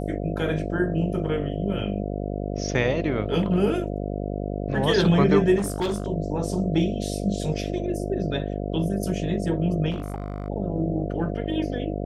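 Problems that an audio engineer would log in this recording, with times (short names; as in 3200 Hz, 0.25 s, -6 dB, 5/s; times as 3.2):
buzz 50 Hz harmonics 14 -29 dBFS
5.57–6.08 clipped -21.5 dBFS
9.9–10.48 clipped -25 dBFS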